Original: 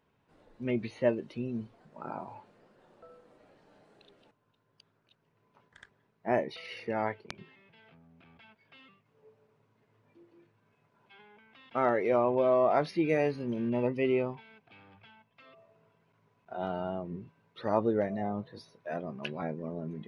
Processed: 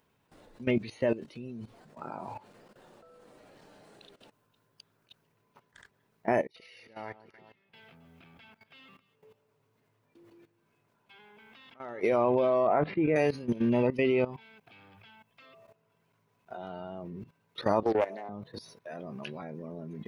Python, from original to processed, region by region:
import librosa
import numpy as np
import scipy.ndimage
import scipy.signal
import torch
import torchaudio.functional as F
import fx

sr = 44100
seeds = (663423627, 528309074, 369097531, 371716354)

y = fx.chain(x, sr, fx.auto_swell(attack_ms=638.0),
    fx.echo_alternate(ms=135, hz=1400.0, feedback_pct=52, wet_db=-8.5), at=(6.46, 12.01))
y = fx.chain(y, sr, fx.bessel_lowpass(hz=1600.0, order=8),
    fx.sustainer(db_per_s=150.0), at=(12.67, 13.16))
y = fx.chain(y, sr, fx.highpass(hz=310.0, slope=24),
    fx.doppler_dist(depth_ms=0.35), at=(17.83, 18.29))
y = fx.level_steps(y, sr, step_db=16)
y = fx.high_shelf(y, sr, hz=4900.0, db=11.5)
y = F.gain(torch.from_numpy(y), 7.0).numpy()